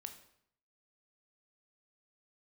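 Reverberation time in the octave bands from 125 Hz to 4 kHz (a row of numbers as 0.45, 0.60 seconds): 0.80, 0.70, 0.70, 0.70, 0.65, 0.60 seconds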